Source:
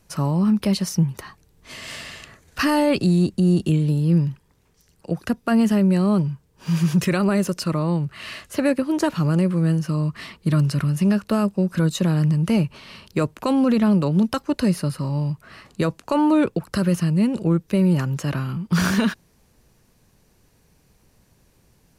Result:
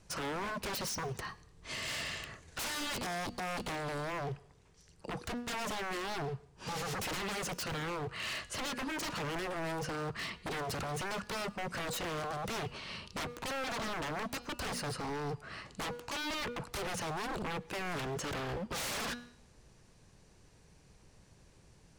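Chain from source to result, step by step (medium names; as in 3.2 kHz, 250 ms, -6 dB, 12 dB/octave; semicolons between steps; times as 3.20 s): low-pass 9.1 kHz 24 dB/octave; peaking EQ 240 Hz -3.5 dB 0.48 oct; de-hum 241.3 Hz, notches 27; in parallel at -0.5 dB: peak limiter -21 dBFS, peak gain reduction 10.5 dB; on the sum: wavefolder -25 dBFS; on a send at -24 dB: reverberation RT60 0.65 s, pre-delay 94 ms; on the sum: trim -7.5 dB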